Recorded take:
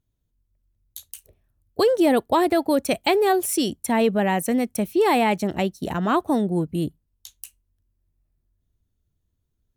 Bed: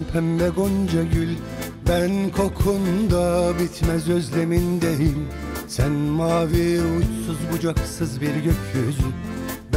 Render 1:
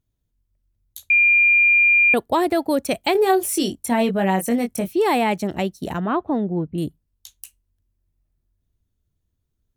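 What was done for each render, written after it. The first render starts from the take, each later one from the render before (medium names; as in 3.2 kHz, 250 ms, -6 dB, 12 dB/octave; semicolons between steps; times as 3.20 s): 1.10–2.14 s: bleep 2.4 kHz -11.5 dBFS; 3.13–4.89 s: doubling 21 ms -5.5 dB; 6.00–6.78 s: distance through air 390 m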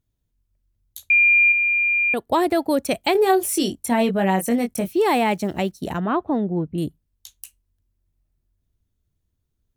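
1.52–2.27 s: gain -5 dB; 4.74–5.82 s: block-companded coder 7-bit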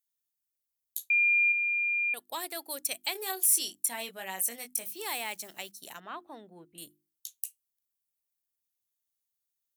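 differentiator; hum notches 50/100/150/200/250/300/350 Hz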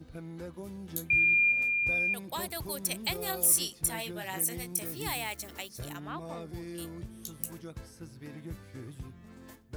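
add bed -22 dB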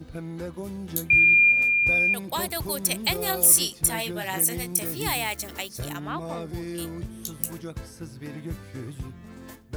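trim +7.5 dB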